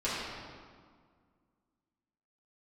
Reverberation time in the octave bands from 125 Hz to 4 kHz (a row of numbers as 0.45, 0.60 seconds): 2.2, 2.4, 1.8, 1.8, 1.4, 1.2 seconds